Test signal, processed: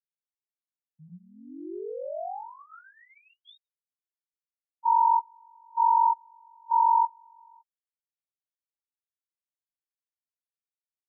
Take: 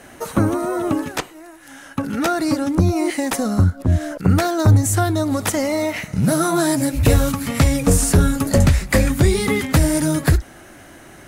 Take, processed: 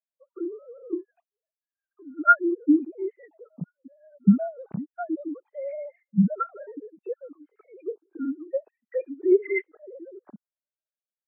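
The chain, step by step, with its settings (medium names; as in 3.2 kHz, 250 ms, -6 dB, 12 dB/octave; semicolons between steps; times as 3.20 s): formants replaced by sine waves; spectral contrast expander 2.5:1; trim -5.5 dB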